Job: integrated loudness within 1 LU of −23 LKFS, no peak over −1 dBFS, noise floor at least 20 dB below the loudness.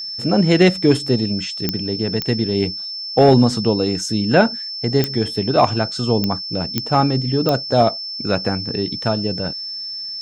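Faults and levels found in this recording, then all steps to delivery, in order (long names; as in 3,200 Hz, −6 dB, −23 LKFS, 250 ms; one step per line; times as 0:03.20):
number of clicks 6; interfering tone 5,300 Hz; level of the tone −26 dBFS; integrated loudness −18.5 LKFS; sample peak −1.0 dBFS; target loudness −23.0 LKFS
→ click removal
notch filter 5,300 Hz, Q 30
level −4.5 dB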